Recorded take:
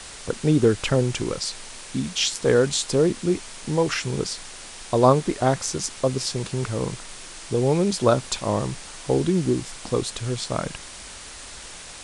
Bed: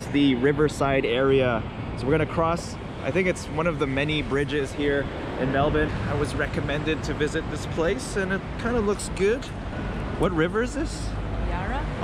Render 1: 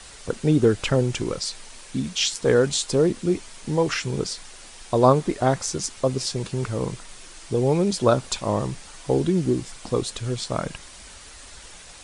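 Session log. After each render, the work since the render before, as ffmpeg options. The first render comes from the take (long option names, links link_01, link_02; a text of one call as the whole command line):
ffmpeg -i in.wav -af "afftdn=noise_reduction=6:noise_floor=-40" out.wav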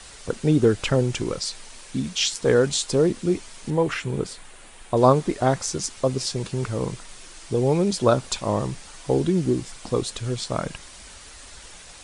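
ffmpeg -i in.wav -filter_complex "[0:a]asettb=1/sr,asplit=3[link_01][link_02][link_03];[link_01]atrim=end=3.704[link_04];[link_02]atrim=start=3.7:end=4.97,asetpts=PTS-STARTPTS,afade=type=in:duration=0.004:curve=qsin,afade=type=out:start_time=1.266:duration=0.004:curve=qsin,equalizer=frequency=5400:width=1.4:gain=-11[link_05];[link_03]atrim=start=4.966[link_06];[link_04][link_05]acrossfade=duration=0.004:curve1=hsin:curve2=qsin[link_07];[link_07][link_06]acrossfade=duration=0.004:curve1=qsin:curve2=hsin" out.wav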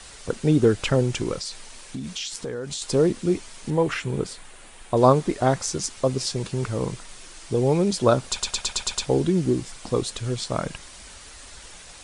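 ffmpeg -i in.wav -filter_complex "[0:a]asettb=1/sr,asplit=3[link_01][link_02][link_03];[link_01]atrim=end=1.404[link_04];[link_02]atrim=start=1.4:end=2.82,asetpts=PTS-STARTPTS,afade=type=in:duration=0.004:curve=qsin,afade=type=out:start_time=1.416:duration=0.004:curve=qsin,acompressor=threshold=-28dB:ratio=6:attack=3.2:release=140:knee=1:detection=peak[link_05];[link_03]atrim=start=2.816[link_06];[link_04][link_05]acrossfade=duration=0.004:curve1=hsin:curve2=qsin[link_07];[link_07][link_06]acrossfade=duration=0.004:curve1=qsin:curve2=hsin,asplit=8[link_08][link_09][link_10][link_11][link_12][link_13][link_14][link_15];[link_08]atrim=end=8.402[link_16];[link_09]atrim=start=8.288:end=8.402[link_17];[link_10]atrim=start=8.288:end=8.402[link_18];[link_11]atrim=start=8.288:end=8.402[link_19];[link_12]atrim=start=8.288:end=8.402[link_20];[link_13]atrim=start=8.288:end=8.402[link_21];[link_14]atrim=start=8.288:end=8.402[link_22];[link_15]atrim=start=9.058[link_23];[link_16][link_17]acrossfade=duration=0.004:curve1=hsin:curve2=hsin[link_24];[link_24][link_18]acrossfade=duration=0.004:curve1=hsin:curve2=hsin[link_25];[link_25][link_19]acrossfade=duration=0.004:curve1=hsin:curve2=hsin[link_26];[link_26][link_20]acrossfade=duration=0.004:curve1=hsin:curve2=hsin[link_27];[link_27][link_21]acrossfade=duration=0.004:curve1=hsin:curve2=hsin[link_28];[link_28][link_22]acrossfade=duration=0.004:curve1=hsin:curve2=hsin[link_29];[link_29][link_23]acrossfade=duration=0.004:curve1=hsin:curve2=hsin" out.wav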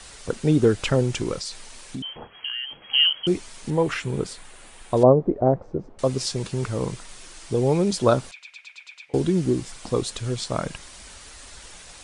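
ffmpeg -i in.wav -filter_complex "[0:a]asettb=1/sr,asplit=3[link_01][link_02][link_03];[link_01]atrim=end=2.024[link_04];[link_02]atrim=start=2.02:end=3.27,asetpts=PTS-STARTPTS,afade=type=in:duration=0.004:curve=qsin,afade=type=out:start_time=1.246:duration=0.004:curve=qsin,lowpass=frequency=2800:width_type=q:width=0.5098,lowpass=frequency=2800:width_type=q:width=0.6013,lowpass=frequency=2800:width_type=q:width=0.9,lowpass=frequency=2800:width_type=q:width=2.563,afreqshift=-3300[link_05];[link_03]atrim=start=3.266[link_06];[link_04][link_05]acrossfade=duration=0.004:curve1=hsin:curve2=qsin[link_07];[link_07][link_06]acrossfade=duration=0.004:curve1=qsin:curve2=hsin,asettb=1/sr,asplit=3[link_08][link_09][link_10];[link_08]atrim=end=5.034[link_11];[link_09]atrim=start=5.03:end=5.99,asetpts=PTS-STARTPTS,afade=type=in:duration=0.004:curve=qsin,afade=type=out:start_time=0.956:duration=0.004:curve=qsin,lowpass=frequency=570:width_type=q:width=1.5[link_12];[link_10]atrim=start=5.986[link_13];[link_11][link_12]acrossfade=duration=0.004:curve1=hsin:curve2=qsin[link_14];[link_14][link_13]acrossfade=duration=0.004:curve1=qsin:curve2=hsin,asettb=1/sr,asplit=3[link_15][link_16][link_17];[link_15]atrim=end=8.314[link_18];[link_16]atrim=start=8.31:end=9.14,asetpts=PTS-STARTPTS,afade=type=in:duration=0.004:curve=qsin,afade=type=out:start_time=0.826:duration=0.004:curve=qsin,bandpass=frequency=2300:width_type=q:width=8.6[link_19];[link_17]atrim=start=9.136[link_20];[link_18][link_19]acrossfade=duration=0.004:curve1=hsin:curve2=qsin[link_21];[link_21][link_20]acrossfade=duration=0.004:curve1=qsin:curve2=hsin" out.wav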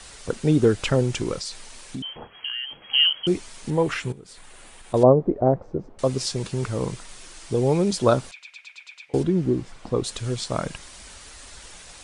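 ffmpeg -i in.wav -filter_complex "[0:a]asettb=1/sr,asplit=3[link_01][link_02][link_03];[link_01]atrim=end=4.124[link_04];[link_02]atrim=start=4.12:end=4.94,asetpts=PTS-STARTPTS,afade=type=in:duration=0.004:curve=qsin,afade=type=out:start_time=0.816:duration=0.004:curve=qsin,acompressor=threshold=-40dB:ratio=8:attack=3.2:release=140:knee=1:detection=peak[link_05];[link_03]atrim=start=4.936[link_06];[link_04][link_05]acrossfade=duration=0.004:curve1=hsin:curve2=qsin[link_07];[link_07][link_06]acrossfade=duration=0.004:curve1=qsin:curve2=hsin,asettb=1/sr,asplit=3[link_08][link_09][link_10];[link_08]atrim=end=9.234[link_11];[link_09]atrim=start=9.23:end=10.04,asetpts=PTS-STARTPTS,afade=type=in:duration=0.004:curve=qsin,afade=type=out:start_time=0.806:duration=0.004:curve=qsin,lowpass=frequency=1600:poles=1[link_12];[link_10]atrim=start=10.036[link_13];[link_11][link_12]acrossfade=duration=0.004:curve1=hsin:curve2=qsin[link_14];[link_14][link_13]acrossfade=duration=0.004:curve1=qsin:curve2=hsin" out.wav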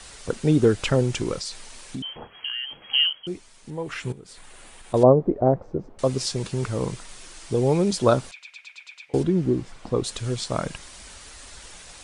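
ffmpeg -i in.wav -filter_complex "[0:a]asplit=3[link_01][link_02][link_03];[link_01]atrim=end=3.2,asetpts=PTS-STARTPTS,afade=type=out:start_time=2.93:duration=0.27:silence=0.316228[link_04];[link_02]atrim=start=3.2:end=3.85,asetpts=PTS-STARTPTS,volume=-10dB[link_05];[link_03]atrim=start=3.85,asetpts=PTS-STARTPTS,afade=type=in:duration=0.27:silence=0.316228[link_06];[link_04][link_05][link_06]concat=n=3:v=0:a=1" out.wav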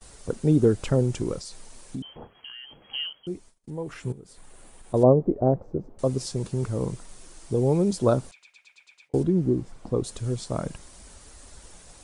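ffmpeg -i in.wav -af "agate=range=-27dB:threshold=-47dB:ratio=16:detection=peak,equalizer=frequency=2700:width=0.4:gain=-11.5" out.wav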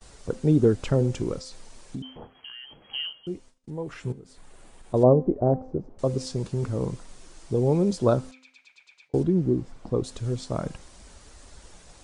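ffmpeg -i in.wav -af "lowpass=7000,bandreject=frequency=258.8:width_type=h:width=4,bandreject=frequency=517.6:width_type=h:width=4,bandreject=frequency=776.4:width_type=h:width=4,bandreject=frequency=1035.2:width_type=h:width=4,bandreject=frequency=1294:width_type=h:width=4,bandreject=frequency=1552.8:width_type=h:width=4,bandreject=frequency=1811.6:width_type=h:width=4,bandreject=frequency=2070.4:width_type=h:width=4,bandreject=frequency=2329.2:width_type=h:width=4,bandreject=frequency=2588:width_type=h:width=4,bandreject=frequency=2846.8:width_type=h:width=4,bandreject=frequency=3105.6:width_type=h:width=4,bandreject=frequency=3364.4:width_type=h:width=4,bandreject=frequency=3623.2:width_type=h:width=4,bandreject=frequency=3882:width_type=h:width=4,bandreject=frequency=4140.8:width_type=h:width=4,bandreject=frequency=4399.6:width_type=h:width=4,bandreject=frequency=4658.4:width_type=h:width=4,bandreject=frequency=4917.2:width_type=h:width=4,bandreject=frequency=5176:width_type=h:width=4,bandreject=frequency=5434.8:width_type=h:width=4,bandreject=frequency=5693.6:width_type=h:width=4,bandreject=frequency=5952.4:width_type=h:width=4,bandreject=frequency=6211.2:width_type=h:width=4,bandreject=frequency=6470:width_type=h:width=4,bandreject=frequency=6728.8:width_type=h:width=4,bandreject=frequency=6987.6:width_type=h:width=4" out.wav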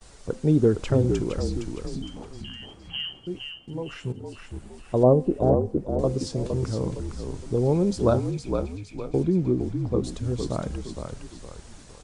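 ffmpeg -i in.wav -filter_complex "[0:a]asplit=6[link_01][link_02][link_03][link_04][link_05][link_06];[link_02]adelay=462,afreqshift=-49,volume=-6dB[link_07];[link_03]adelay=924,afreqshift=-98,volume=-13.5dB[link_08];[link_04]adelay=1386,afreqshift=-147,volume=-21.1dB[link_09];[link_05]adelay=1848,afreqshift=-196,volume=-28.6dB[link_10];[link_06]adelay=2310,afreqshift=-245,volume=-36.1dB[link_11];[link_01][link_07][link_08][link_09][link_10][link_11]amix=inputs=6:normalize=0" out.wav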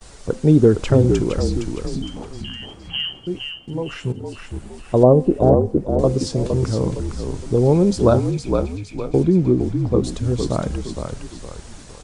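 ffmpeg -i in.wav -af "volume=7dB,alimiter=limit=-2dB:level=0:latency=1" out.wav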